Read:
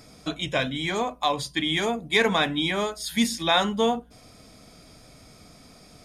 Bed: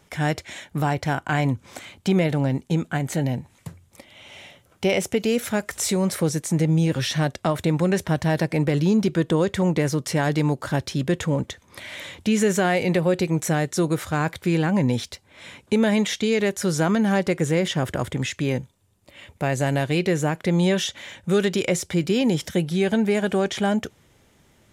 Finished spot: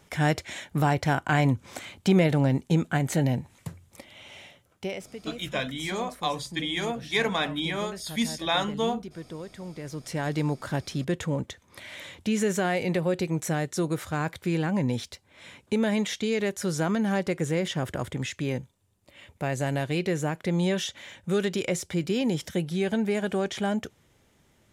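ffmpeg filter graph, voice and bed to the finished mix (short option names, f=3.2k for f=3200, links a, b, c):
-filter_complex "[0:a]adelay=5000,volume=-4.5dB[a];[1:a]volume=12.5dB,afade=t=out:st=4.06:d=0.99:silence=0.125893,afade=t=in:st=9.78:d=0.62:silence=0.223872[b];[a][b]amix=inputs=2:normalize=0"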